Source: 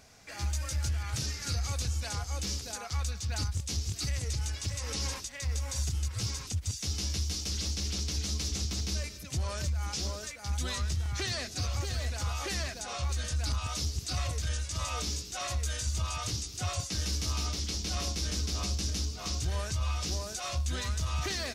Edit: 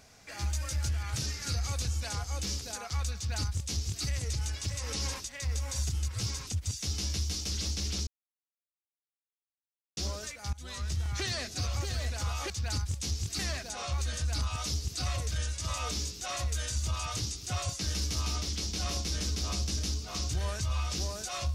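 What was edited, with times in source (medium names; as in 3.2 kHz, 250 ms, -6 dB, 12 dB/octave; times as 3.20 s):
3.16–4.05 s: copy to 12.50 s
8.07–9.97 s: mute
10.53–10.99 s: fade in, from -23 dB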